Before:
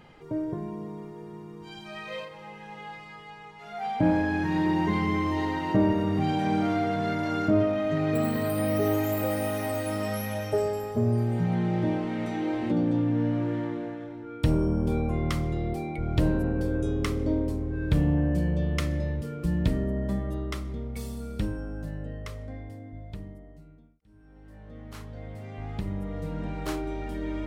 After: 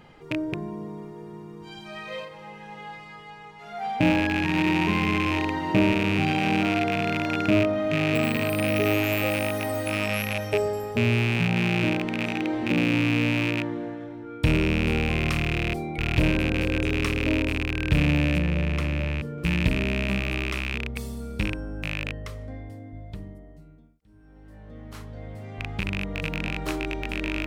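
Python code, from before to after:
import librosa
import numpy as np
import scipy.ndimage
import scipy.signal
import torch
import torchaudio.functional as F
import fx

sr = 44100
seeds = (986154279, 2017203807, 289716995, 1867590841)

y = fx.rattle_buzz(x, sr, strikes_db=-30.0, level_db=-17.0)
y = fx.high_shelf(y, sr, hz=2300.0, db=-10.0, at=(18.38, 19.38))
y = F.gain(torch.from_numpy(y), 1.5).numpy()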